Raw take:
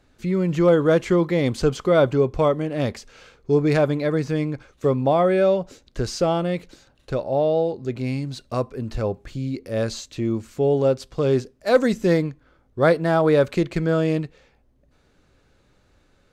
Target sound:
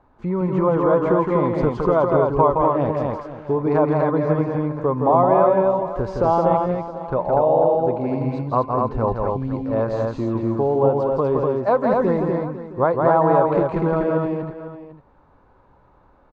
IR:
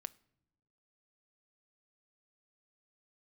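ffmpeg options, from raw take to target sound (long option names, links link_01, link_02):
-af "acompressor=threshold=-19dB:ratio=6,lowpass=frequency=970:width_type=q:width=5.2,aecho=1:1:166.2|244.9:0.631|0.708,crystalizer=i=4:c=0,aecho=1:1:499:0.2"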